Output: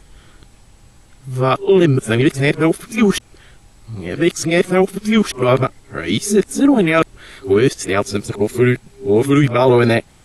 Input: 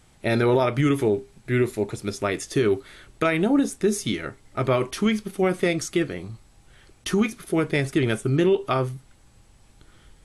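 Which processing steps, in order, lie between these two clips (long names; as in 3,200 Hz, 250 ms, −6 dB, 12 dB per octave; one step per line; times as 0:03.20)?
played backwards from end to start
level +8 dB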